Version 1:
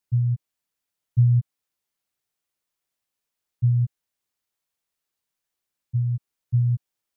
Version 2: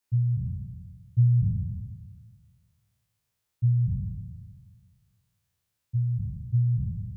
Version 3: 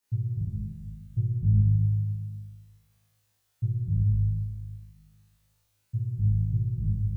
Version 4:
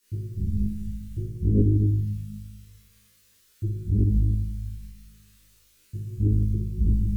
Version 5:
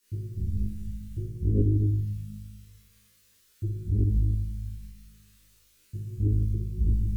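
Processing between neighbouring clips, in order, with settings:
spectral sustain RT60 1.75 s; peaking EQ 150 Hz -10 dB 0.37 oct
compression 2.5:1, threshold -26 dBFS, peak gain reduction 6.5 dB; on a send: flutter echo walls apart 3.3 m, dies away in 1.2 s
chorus voices 6, 1 Hz, delay 12 ms, depth 3 ms; sine folder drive 7 dB, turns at -12 dBFS; static phaser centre 310 Hz, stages 4; trim +5.5 dB
dynamic bell 200 Hz, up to -6 dB, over -39 dBFS, Q 2.1; trim -2 dB

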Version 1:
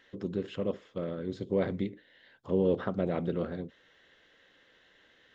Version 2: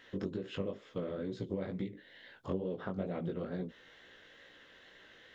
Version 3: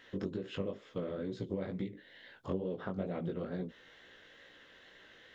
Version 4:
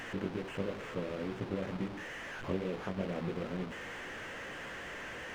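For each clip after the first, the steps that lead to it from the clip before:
compression 10:1, threshold -38 dBFS, peak gain reduction 16 dB; chorus 2.2 Hz, delay 16 ms, depth 5.8 ms; trim +7.5 dB
no audible change
one-bit delta coder 16 kbps, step -35 dBFS; hysteresis with a dead band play -41.5 dBFS; trim +1 dB

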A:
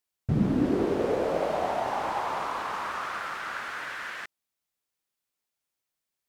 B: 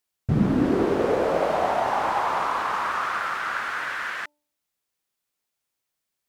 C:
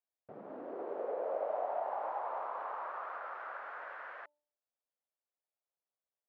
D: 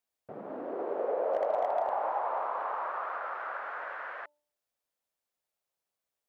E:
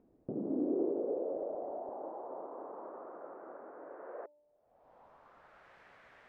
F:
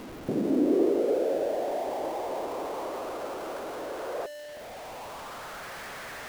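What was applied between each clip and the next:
de-hum 296 Hz, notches 3; dynamic bell 1.3 kHz, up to +4 dB, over -42 dBFS, Q 0.91; trim +3.5 dB
compression, threshold -24 dBFS, peak gain reduction 9 dB; ladder band-pass 690 Hz, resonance 45%
overload inside the chain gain 27.5 dB; trim +6.5 dB
upward compressor, threshold -38 dBFS; peak limiter -27 dBFS, peak gain reduction 6 dB; low-pass sweep 310 Hz -> 1.8 kHz, 3.83–5.76 s; trim +4 dB
jump at every zero crossing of -45 dBFS; trim +8.5 dB

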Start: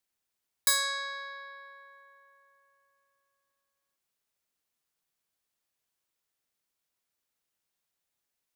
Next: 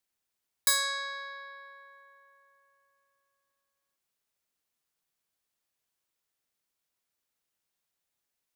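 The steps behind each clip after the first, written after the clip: no audible change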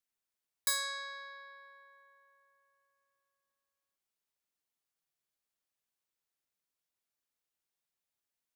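hum notches 60/120/180 Hz; trim -6.5 dB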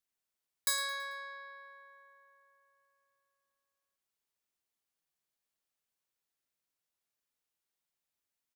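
feedback delay 110 ms, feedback 44%, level -14.5 dB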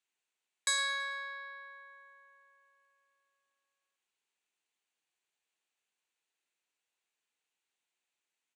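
cabinet simulation 350–8300 Hz, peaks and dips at 590 Hz -6 dB, 1.2 kHz -4 dB, 2.6 kHz +5 dB, 5.2 kHz -9 dB; trim +4.5 dB

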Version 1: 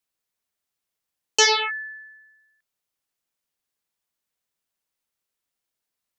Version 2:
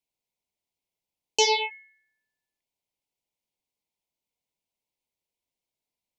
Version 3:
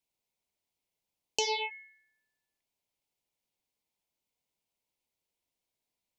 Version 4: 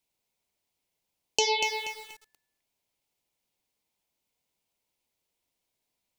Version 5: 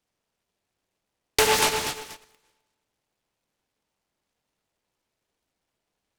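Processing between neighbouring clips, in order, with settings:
elliptic band-stop 1–2.1 kHz, stop band 40 dB; treble shelf 4.4 kHz -9 dB; de-hum 80.62 Hz, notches 38
compression 3:1, threshold -32 dBFS, peak gain reduction 11.5 dB; trim +1 dB
bit-crushed delay 240 ms, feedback 35%, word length 8-bit, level -6.5 dB; trim +5 dB
plate-style reverb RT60 1.2 s, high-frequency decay 0.9×, DRR 16.5 dB; resampled via 8 kHz; delay time shaken by noise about 1.7 kHz, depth 0.16 ms; trim +6.5 dB

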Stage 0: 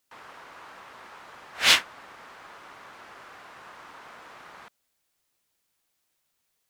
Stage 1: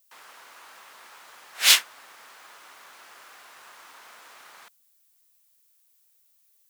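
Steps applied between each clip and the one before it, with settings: RIAA curve recording; trim -4 dB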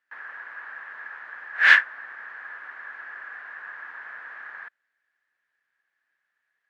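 resonant low-pass 1.7 kHz, resonance Q 12; trim -1 dB

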